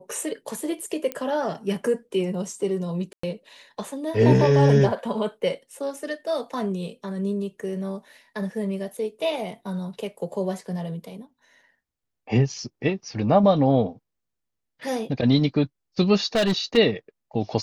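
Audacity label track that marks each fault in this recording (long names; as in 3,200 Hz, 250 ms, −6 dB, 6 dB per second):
1.120000	1.120000	click −13 dBFS
3.130000	3.230000	drop-out 104 ms
16.350000	16.780000	clipping −17.5 dBFS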